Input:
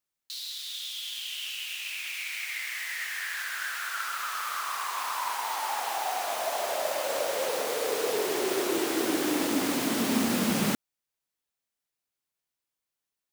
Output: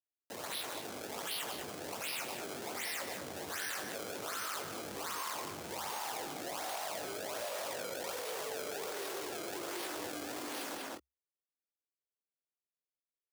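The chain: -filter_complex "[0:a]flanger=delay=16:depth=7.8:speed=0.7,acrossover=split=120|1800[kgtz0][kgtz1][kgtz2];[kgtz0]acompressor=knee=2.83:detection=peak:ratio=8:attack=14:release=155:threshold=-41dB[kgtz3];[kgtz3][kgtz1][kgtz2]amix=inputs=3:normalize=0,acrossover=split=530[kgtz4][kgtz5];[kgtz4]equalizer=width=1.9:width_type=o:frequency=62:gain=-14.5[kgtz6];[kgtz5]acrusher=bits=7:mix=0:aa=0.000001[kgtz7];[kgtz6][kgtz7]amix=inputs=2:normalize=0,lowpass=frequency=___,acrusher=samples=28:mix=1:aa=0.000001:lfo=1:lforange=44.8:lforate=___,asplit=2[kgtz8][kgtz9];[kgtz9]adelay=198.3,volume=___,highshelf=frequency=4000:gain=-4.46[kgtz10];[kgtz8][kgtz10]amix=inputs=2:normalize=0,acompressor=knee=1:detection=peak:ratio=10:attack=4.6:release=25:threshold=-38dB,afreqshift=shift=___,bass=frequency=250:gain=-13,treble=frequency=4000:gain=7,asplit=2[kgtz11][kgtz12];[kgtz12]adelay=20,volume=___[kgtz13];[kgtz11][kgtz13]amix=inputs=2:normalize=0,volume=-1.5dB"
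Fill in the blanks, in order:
9200, 1.3, -7dB, 66, -9dB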